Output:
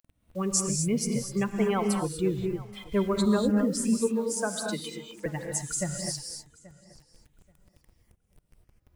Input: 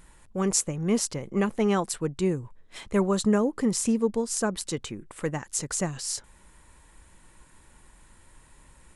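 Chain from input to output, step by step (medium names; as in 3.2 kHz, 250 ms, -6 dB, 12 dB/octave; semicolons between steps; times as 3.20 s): expander on every frequency bin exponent 2; 3.77–5.26 s: steep high-pass 150 Hz 96 dB/octave; in parallel at +1 dB: compression 12:1, threshold -34 dBFS, peak gain reduction 14.5 dB; on the sum: bit crusher 9-bit; on a send: filtered feedback delay 831 ms, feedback 20%, low-pass 4.8 kHz, level -20 dB; on the sum: gated-style reverb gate 270 ms rising, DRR 3 dB; trim -2 dB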